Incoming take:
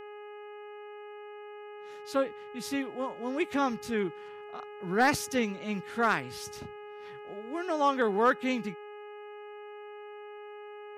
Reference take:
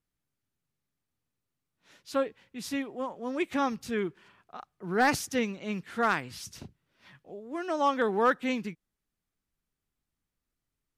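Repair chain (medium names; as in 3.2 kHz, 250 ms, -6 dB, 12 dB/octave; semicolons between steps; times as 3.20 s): de-hum 416.2 Hz, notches 7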